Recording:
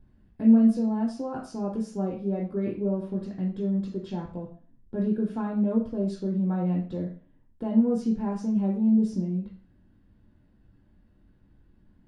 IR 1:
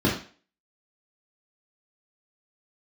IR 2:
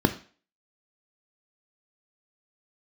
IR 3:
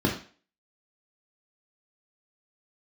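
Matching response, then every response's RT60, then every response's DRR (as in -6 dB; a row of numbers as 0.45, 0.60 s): 3; 0.40, 0.40, 0.40 s; -5.0, 8.0, -1.0 dB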